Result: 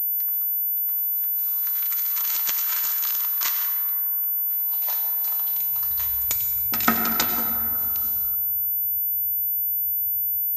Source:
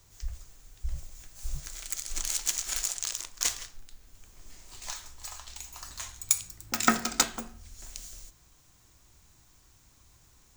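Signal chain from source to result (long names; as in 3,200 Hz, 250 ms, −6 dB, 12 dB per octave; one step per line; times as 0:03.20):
high-pass filter sweep 1,100 Hz → 67 Hz, 0:04.55–0:05.98
convolution reverb RT60 2.7 s, pre-delay 82 ms, DRR 5.5 dB
switching amplifier with a slow clock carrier 14,000 Hz
level +2 dB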